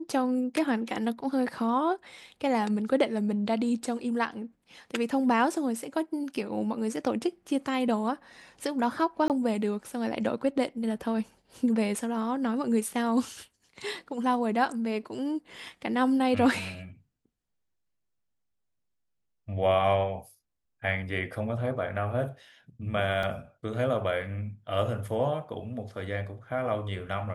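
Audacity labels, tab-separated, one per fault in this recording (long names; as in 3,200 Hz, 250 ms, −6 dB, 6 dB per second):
9.280000	9.300000	drop-out 18 ms
23.230000	23.230000	drop-out 2.9 ms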